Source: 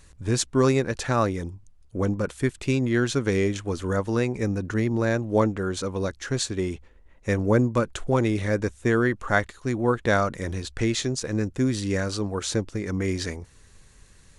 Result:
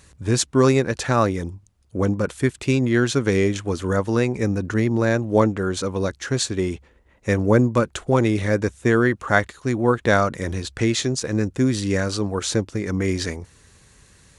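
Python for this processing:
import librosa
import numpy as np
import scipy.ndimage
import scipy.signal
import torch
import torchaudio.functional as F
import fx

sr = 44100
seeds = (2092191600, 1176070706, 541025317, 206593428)

y = scipy.signal.sosfilt(scipy.signal.butter(2, 60.0, 'highpass', fs=sr, output='sos'), x)
y = F.gain(torch.from_numpy(y), 4.0).numpy()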